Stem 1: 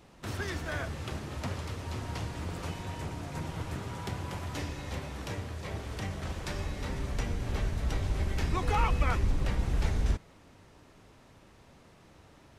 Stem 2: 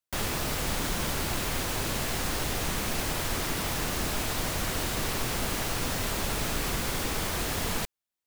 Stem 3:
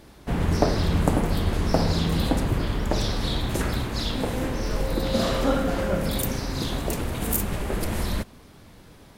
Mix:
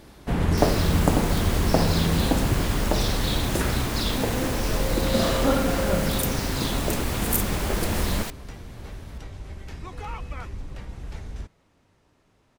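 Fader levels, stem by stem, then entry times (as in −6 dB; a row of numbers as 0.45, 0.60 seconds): −7.5, −2.0, +1.0 decibels; 1.30, 0.45, 0.00 seconds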